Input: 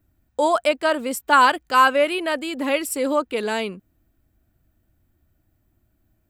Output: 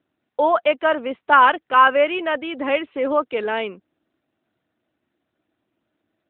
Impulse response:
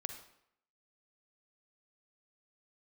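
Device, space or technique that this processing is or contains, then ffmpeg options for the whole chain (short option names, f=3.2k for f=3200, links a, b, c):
telephone: -af "highpass=310,lowpass=3.3k,volume=2.5dB" -ar 8000 -c:a libopencore_amrnb -b:a 12200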